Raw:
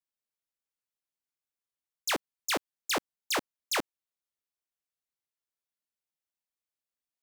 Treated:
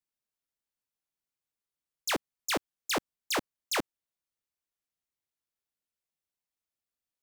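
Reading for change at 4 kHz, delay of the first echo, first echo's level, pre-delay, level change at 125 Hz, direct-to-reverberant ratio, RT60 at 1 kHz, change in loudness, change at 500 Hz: -1.0 dB, none, none, none, +3.5 dB, none, none, -0.5 dB, +0.5 dB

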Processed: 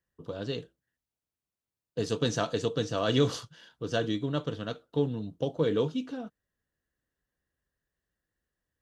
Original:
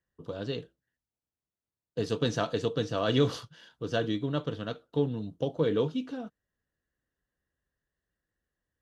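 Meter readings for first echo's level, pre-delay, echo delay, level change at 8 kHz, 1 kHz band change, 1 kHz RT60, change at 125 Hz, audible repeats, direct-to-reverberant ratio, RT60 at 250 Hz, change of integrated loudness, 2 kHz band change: none, none, none, +5.5 dB, 0.0 dB, none, 0.0 dB, none, none, none, 0.0 dB, 0.0 dB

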